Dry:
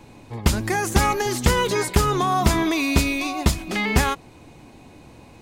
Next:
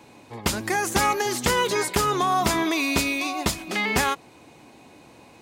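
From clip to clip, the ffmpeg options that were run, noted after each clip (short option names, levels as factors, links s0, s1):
-af "highpass=f=320:p=1"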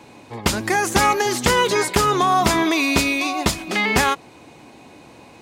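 -af "highshelf=f=11000:g=-6.5,volume=1.78"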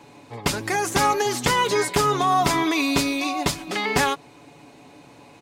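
-af "aecho=1:1:7:0.47,volume=0.631"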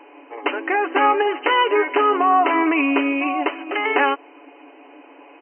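-af "afftfilt=real='re*between(b*sr/4096,260,3100)':imag='im*between(b*sr/4096,260,3100)':win_size=4096:overlap=0.75,volume=1.58"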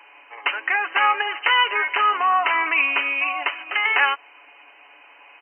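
-af "highpass=1400,volume=1.68"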